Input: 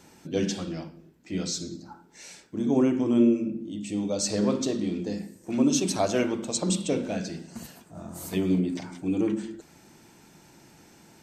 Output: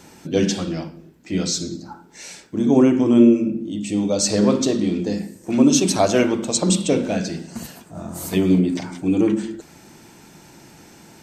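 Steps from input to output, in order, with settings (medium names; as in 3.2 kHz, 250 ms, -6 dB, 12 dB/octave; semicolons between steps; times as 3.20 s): trim +8 dB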